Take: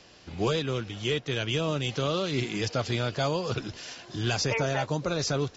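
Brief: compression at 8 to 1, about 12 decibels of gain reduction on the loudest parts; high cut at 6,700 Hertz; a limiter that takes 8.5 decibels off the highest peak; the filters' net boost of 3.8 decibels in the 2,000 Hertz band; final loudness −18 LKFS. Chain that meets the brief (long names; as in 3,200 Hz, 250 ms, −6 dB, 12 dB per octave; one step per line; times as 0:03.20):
low-pass filter 6,700 Hz
parametric band 2,000 Hz +5 dB
downward compressor 8 to 1, threshold −35 dBFS
level +23.5 dB
brickwall limiter −8 dBFS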